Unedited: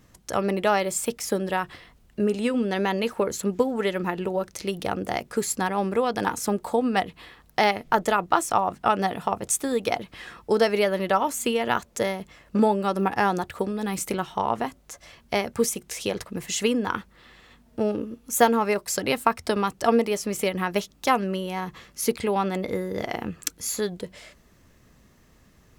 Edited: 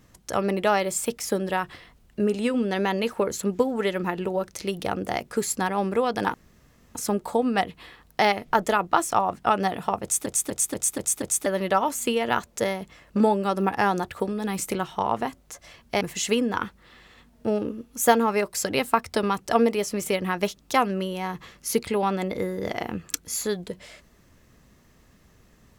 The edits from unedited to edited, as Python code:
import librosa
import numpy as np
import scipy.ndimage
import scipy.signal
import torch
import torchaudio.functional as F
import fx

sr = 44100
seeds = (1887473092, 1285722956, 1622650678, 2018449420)

y = fx.edit(x, sr, fx.insert_room_tone(at_s=6.34, length_s=0.61),
    fx.stutter_over(start_s=9.41, slice_s=0.24, count=6),
    fx.cut(start_s=15.4, length_s=0.94), tone=tone)